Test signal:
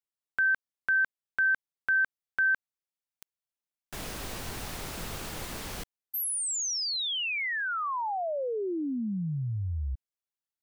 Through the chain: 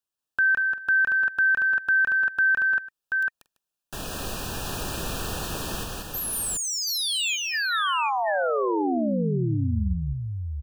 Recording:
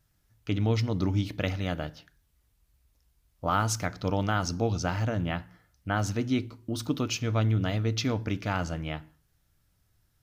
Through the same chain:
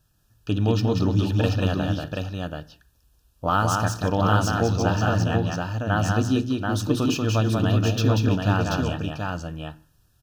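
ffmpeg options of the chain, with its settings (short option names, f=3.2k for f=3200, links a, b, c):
-filter_complex "[0:a]acrossover=split=2600[a][b];[b]asoftclip=type=tanh:threshold=-32.5dB[c];[a][c]amix=inputs=2:normalize=0,asuperstop=centerf=2100:order=20:qfactor=3.8,aecho=1:1:187|233|337|733:0.668|0.119|0.112|0.631,volume=4.5dB"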